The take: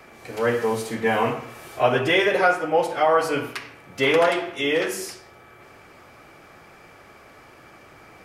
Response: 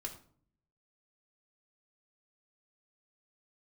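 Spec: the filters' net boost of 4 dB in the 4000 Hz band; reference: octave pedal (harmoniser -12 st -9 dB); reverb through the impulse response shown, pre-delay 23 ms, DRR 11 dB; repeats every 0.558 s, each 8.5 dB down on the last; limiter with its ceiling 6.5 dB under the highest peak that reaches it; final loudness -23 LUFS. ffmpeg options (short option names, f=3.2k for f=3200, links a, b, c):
-filter_complex "[0:a]equalizer=f=4k:t=o:g=5.5,alimiter=limit=-13dB:level=0:latency=1,aecho=1:1:558|1116|1674|2232:0.376|0.143|0.0543|0.0206,asplit=2[a][b];[1:a]atrim=start_sample=2205,adelay=23[c];[b][c]afir=irnorm=-1:irlink=0,volume=-9dB[d];[a][d]amix=inputs=2:normalize=0,asplit=2[e][f];[f]asetrate=22050,aresample=44100,atempo=2,volume=-9dB[g];[e][g]amix=inputs=2:normalize=0"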